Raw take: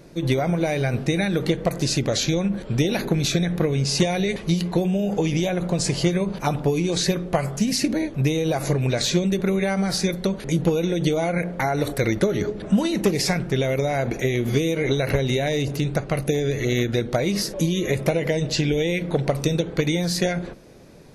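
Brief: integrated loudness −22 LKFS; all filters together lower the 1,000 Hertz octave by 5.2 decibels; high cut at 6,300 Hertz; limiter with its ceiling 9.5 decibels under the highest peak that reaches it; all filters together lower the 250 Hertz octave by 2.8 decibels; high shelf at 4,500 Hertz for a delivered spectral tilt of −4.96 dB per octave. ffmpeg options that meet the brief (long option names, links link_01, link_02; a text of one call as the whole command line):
ffmpeg -i in.wav -af "lowpass=6300,equalizer=frequency=250:width_type=o:gain=-4,equalizer=frequency=1000:width_type=o:gain=-8.5,highshelf=frequency=4500:gain=6.5,volume=5.5dB,alimiter=limit=-13.5dB:level=0:latency=1" out.wav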